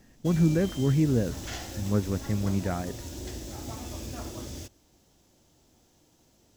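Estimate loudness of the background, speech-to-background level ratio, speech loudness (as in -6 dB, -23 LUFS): -39.0 LUFS, 11.5 dB, -27.5 LUFS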